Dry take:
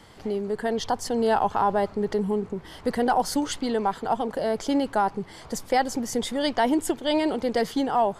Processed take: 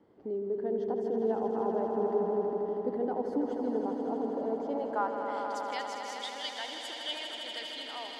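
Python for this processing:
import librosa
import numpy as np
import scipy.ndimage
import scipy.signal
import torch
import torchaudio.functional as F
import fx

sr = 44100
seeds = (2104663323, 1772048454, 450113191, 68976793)

y = fx.filter_sweep_bandpass(x, sr, from_hz=350.0, to_hz=3100.0, start_s=4.49, end_s=5.45, q=1.9)
y = fx.echo_swell(y, sr, ms=80, loudest=5, wet_db=-8.0)
y = F.gain(torch.from_numpy(y), -4.5).numpy()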